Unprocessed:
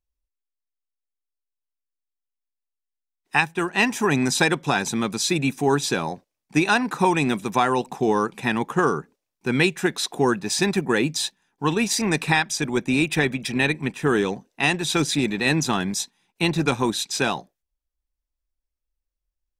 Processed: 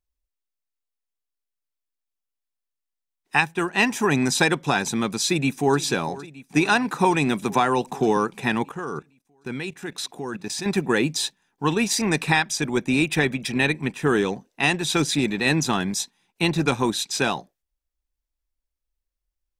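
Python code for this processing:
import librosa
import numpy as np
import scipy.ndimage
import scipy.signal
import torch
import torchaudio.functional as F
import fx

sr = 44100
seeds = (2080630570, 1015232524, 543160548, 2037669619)

y = fx.echo_throw(x, sr, start_s=5.27, length_s=0.53, ms=460, feedback_pct=80, wet_db=-18.0)
y = fx.band_squash(y, sr, depth_pct=40, at=(7.42, 8.17))
y = fx.level_steps(y, sr, step_db=15, at=(8.69, 10.66))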